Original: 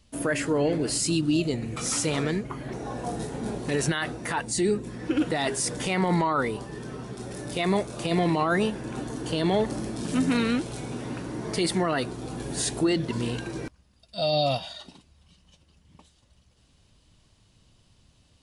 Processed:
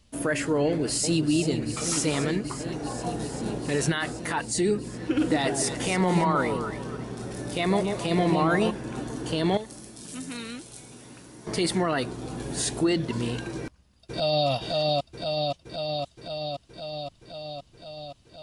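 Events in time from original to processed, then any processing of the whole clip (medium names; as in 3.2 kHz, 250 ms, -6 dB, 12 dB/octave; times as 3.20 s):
0.64–1.32 s: echo throw 390 ms, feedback 85%, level -9.5 dB
5.03–8.71 s: echo whose repeats swap between lows and highs 140 ms, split 810 Hz, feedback 54%, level -4 dB
9.57–11.47 s: pre-emphasis filter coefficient 0.8
13.57–14.48 s: echo throw 520 ms, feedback 75%, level -1 dB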